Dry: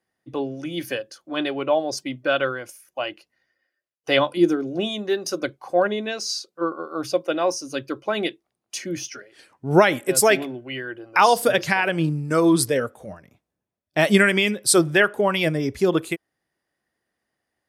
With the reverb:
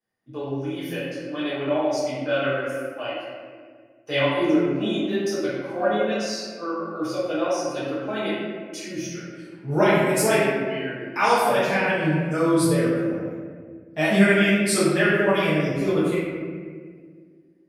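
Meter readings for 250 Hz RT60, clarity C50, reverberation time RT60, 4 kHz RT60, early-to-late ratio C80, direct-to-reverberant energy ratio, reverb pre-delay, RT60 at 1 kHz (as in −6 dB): 2.6 s, −2.5 dB, 1.8 s, 1.0 s, 0.5 dB, −12.0 dB, 4 ms, 1.5 s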